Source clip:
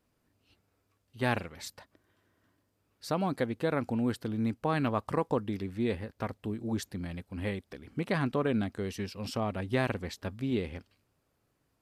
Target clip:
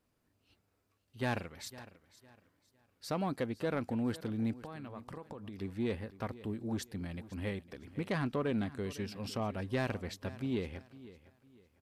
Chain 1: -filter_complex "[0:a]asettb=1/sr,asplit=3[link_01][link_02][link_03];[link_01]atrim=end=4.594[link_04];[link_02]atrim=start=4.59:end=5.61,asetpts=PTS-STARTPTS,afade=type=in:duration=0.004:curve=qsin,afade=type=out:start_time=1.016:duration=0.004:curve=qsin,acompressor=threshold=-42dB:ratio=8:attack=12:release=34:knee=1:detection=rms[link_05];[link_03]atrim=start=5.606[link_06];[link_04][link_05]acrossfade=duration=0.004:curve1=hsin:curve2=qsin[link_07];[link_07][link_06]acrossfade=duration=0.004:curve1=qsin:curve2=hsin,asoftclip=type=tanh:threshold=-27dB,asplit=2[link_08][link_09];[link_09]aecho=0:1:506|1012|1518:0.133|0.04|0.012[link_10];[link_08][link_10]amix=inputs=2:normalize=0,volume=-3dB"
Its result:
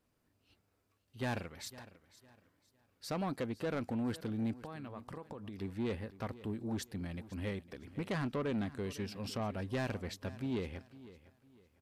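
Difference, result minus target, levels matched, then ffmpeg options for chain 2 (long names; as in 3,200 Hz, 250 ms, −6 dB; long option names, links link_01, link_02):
soft clipping: distortion +7 dB
-filter_complex "[0:a]asettb=1/sr,asplit=3[link_01][link_02][link_03];[link_01]atrim=end=4.594[link_04];[link_02]atrim=start=4.59:end=5.61,asetpts=PTS-STARTPTS,afade=type=in:duration=0.004:curve=qsin,afade=type=out:start_time=1.016:duration=0.004:curve=qsin,acompressor=threshold=-42dB:ratio=8:attack=12:release=34:knee=1:detection=rms[link_05];[link_03]atrim=start=5.606[link_06];[link_04][link_05]acrossfade=duration=0.004:curve1=hsin:curve2=qsin[link_07];[link_07][link_06]acrossfade=duration=0.004:curve1=qsin:curve2=hsin,asoftclip=type=tanh:threshold=-21dB,asplit=2[link_08][link_09];[link_09]aecho=0:1:506|1012|1518:0.133|0.04|0.012[link_10];[link_08][link_10]amix=inputs=2:normalize=0,volume=-3dB"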